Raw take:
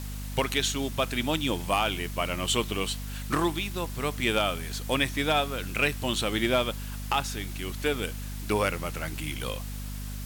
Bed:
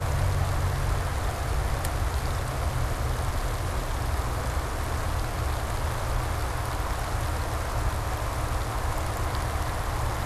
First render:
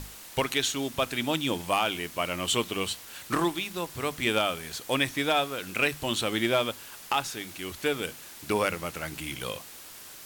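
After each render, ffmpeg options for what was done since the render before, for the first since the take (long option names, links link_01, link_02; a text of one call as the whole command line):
ffmpeg -i in.wav -af "bandreject=frequency=50:width_type=h:width=6,bandreject=frequency=100:width_type=h:width=6,bandreject=frequency=150:width_type=h:width=6,bandreject=frequency=200:width_type=h:width=6,bandreject=frequency=250:width_type=h:width=6" out.wav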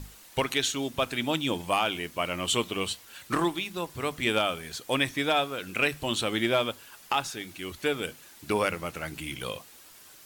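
ffmpeg -i in.wav -af "afftdn=noise_reduction=7:noise_floor=-46" out.wav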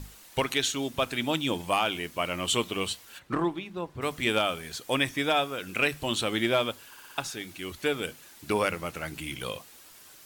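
ffmpeg -i in.wav -filter_complex "[0:a]asplit=3[link_01][link_02][link_03];[link_01]afade=type=out:start_time=3.18:duration=0.02[link_04];[link_02]lowpass=frequency=1100:poles=1,afade=type=in:start_time=3.18:duration=0.02,afade=type=out:start_time=4.01:duration=0.02[link_05];[link_03]afade=type=in:start_time=4.01:duration=0.02[link_06];[link_04][link_05][link_06]amix=inputs=3:normalize=0,asettb=1/sr,asplit=3[link_07][link_08][link_09];[link_07]atrim=end=4.904[link_10];[link_08]atrim=start=4.9:end=5.69,asetpts=PTS-STARTPTS,afade=type=in:duration=0.004:curve=qsin,afade=type=out:start_time=0.786:duration=0.004:curve=qsin,bandreject=frequency=4100:width=10[link_11];[link_09]atrim=start=5.686[link_12];[link_10][link_11]acrossfade=duration=0.004:curve1=hsin:curve2=qsin[link_13];[link_13][link_12]acrossfade=duration=0.004:curve1=qsin:curve2=hsin,asplit=6[link_14][link_15][link_16][link_17][link_18][link_19];[link_14]atrim=end=6.942[link_20];[link_15]atrim=start=6.878:end=6.942[link_21];[link_16]atrim=start=6.878:end=6.942[link_22];[link_17]atrim=start=6.878:end=6.942[link_23];[link_18]atrim=start=6.878:end=6.942[link_24];[link_19]atrim=start=7.178[link_25];[link_20][link_21]acrossfade=duration=0.004:curve1=hsin:curve2=hsin[link_26];[link_26][link_22]acrossfade=duration=0.004:curve1=hsin:curve2=hsin[link_27];[link_27][link_23]acrossfade=duration=0.004:curve1=hsin:curve2=hsin[link_28];[link_28][link_24]acrossfade=duration=0.004:curve1=hsin:curve2=hsin[link_29];[link_29][link_25]acrossfade=duration=0.004:curve1=hsin:curve2=hsin" out.wav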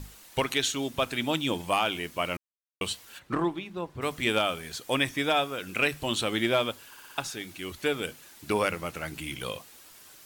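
ffmpeg -i in.wav -filter_complex "[0:a]asplit=3[link_01][link_02][link_03];[link_01]atrim=end=2.37,asetpts=PTS-STARTPTS,afade=type=out:start_time=2.366:duration=0.004:curve=hsin[link_04];[link_02]atrim=start=2.37:end=2.81,asetpts=PTS-STARTPTS,volume=0[link_05];[link_03]atrim=start=2.81,asetpts=PTS-STARTPTS,afade=type=in:duration=0.004:curve=hsin[link_06];[link_04][link_05][link_06]concat=n=3:v=0:a=1" out.wav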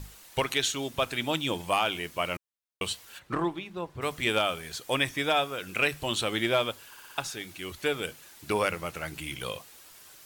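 ffmpeg -i in.wav -af "equalizer=frequency=250:width=2:gain=-4.5" out.wav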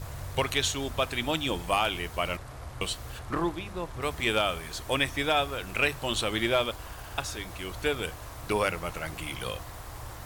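ffmpeg -i in.wav -i bed.wav -filter_complex "[1:a]volume=-13.5dB[link_01];[0:a][link_01]amix=inputs=2:normalize=0" out.wav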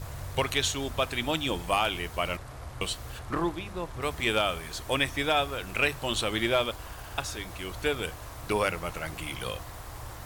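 ffmpeg -i in.wav -af anull out.wav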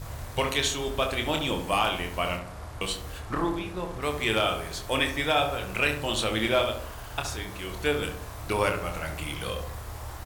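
ffmpeg -i in.wav -filter_complex "[0:a]asplit=2[link_01][link_02];[link_02]adelay=27,volume=-6.5dB[link_03];[link_01][link_03]amix=inputs=2:normalize=0,asplit=2[link_04][link_05];[link_05]adelay=68,lowpass=frequency=1300:poles=1,volume=-5.5dB,asplit=2[link_06][link_07];[link_07]adelay=68,lowpass=frequency=1300:poles=1,volume=0.55,asplit=2[link_08][link_09];[link_09]adelay=68,lowpass=frequency=1300:poles=1,volume=0.55,asplit=2[link_10][link_11];[link_11]adelay=68,lowpass=frequency=1300:poles=1,volume=0.55,asplit=2[link_12][link_13];[link_13]adelay=68,lowpass=frequency=1300:poles=1,volume=0.55,asplit=2[link_14][link_15];[link_15]adelay=68,lowpass=frequency=1300:poles=1,volume=0.55,asplit=2[link_16][link_17];[link_17]adelay=68,lowpass=frequency=1300:poles=1,volume=0.55[link_18];[link_06][link_08][link_10][link_12][link_14][link_16][link_18]amix=inputs=7:normalize=0[link_19];[link_04][link_19]amix=inputs=2:normalize=0" out.wav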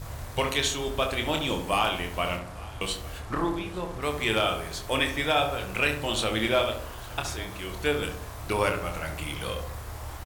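ffmpeg -i in.wav -af "aecho=1:1:850:0.0794" out.wav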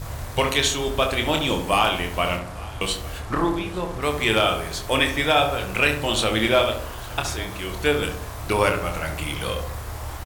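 ffmpeg -i in.wav -af "volume=5.5dB" out.wav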